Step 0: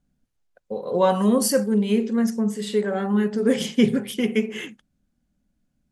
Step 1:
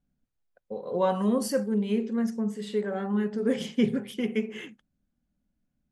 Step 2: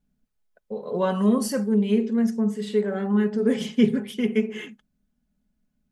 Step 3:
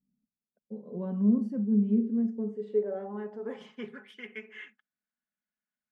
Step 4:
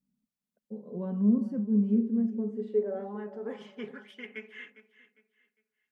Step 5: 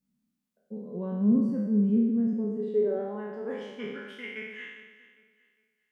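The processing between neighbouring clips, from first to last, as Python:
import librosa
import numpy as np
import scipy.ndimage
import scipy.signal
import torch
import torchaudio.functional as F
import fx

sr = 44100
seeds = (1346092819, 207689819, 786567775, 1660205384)

y1 = fx.high_shelf(x, sr, hz=4700.0, db=-8.0)
y1 = F.gain(torch.from_numpy(y1), -6.0).numpy()
y2 = y1 + 0.47 * np.pad(y1, (int(4.7 * sr / 1000.0), 0))[:len(y1)]
y2 = F.gain(torch.from_numpy(y2), 2.5).numpy()
y3 = fx.filter_sweep_bandpass(y2, sr, from_hz=220.0, to_hz=1700.0, start_s=1.89, end_s=4.21, q=2.3)
y3 = F.gain(torch.from_numpy(y3), -2.5).numpy()
y4 = fx.echo_feedback(y3, sr, ms=404, feedback_pct=31, wet_db=-15.5)
y5 = fx.spec_trails(y4, sr, decay_s=1.14)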